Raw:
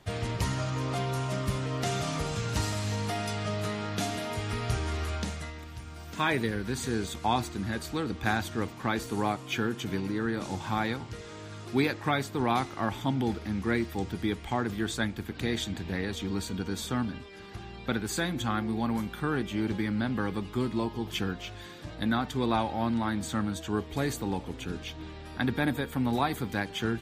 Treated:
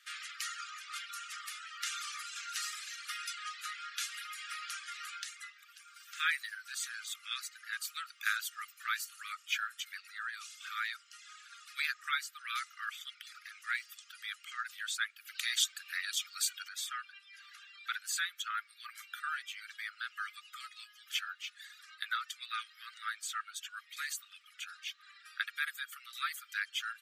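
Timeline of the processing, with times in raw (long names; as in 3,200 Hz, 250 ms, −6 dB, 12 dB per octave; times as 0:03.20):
0:07.82–0:09.05: high-shelf EQ 11,000 Hz +10.5 dB
0:15.27–0:16.69: high-shelf EQ 3,500 Hz +11.5 dB
whole clip: reverb reduction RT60 1.1 s; Chebyshev high-pass filter 1,200 Hz, order 10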